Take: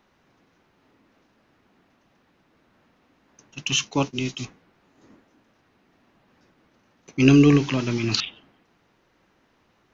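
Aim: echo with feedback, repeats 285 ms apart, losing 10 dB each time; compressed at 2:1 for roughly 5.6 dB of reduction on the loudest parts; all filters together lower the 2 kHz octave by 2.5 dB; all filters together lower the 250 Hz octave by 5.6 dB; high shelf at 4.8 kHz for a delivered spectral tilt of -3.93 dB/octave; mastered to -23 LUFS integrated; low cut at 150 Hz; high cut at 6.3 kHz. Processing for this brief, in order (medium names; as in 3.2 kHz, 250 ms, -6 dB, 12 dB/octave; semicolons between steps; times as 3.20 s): high-pass 150 Hz; low-pass 6.3 kHz; peaking EQ 250 Hz -6 dB; peaking EQ 2 kHz -5.5 dB; treble shelf 4.8 kHz +6.5 dB; compression 2:1, threshold -25 dBFS; feedback delay 285 ms, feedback 32%, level -10 dB; trim +6 dB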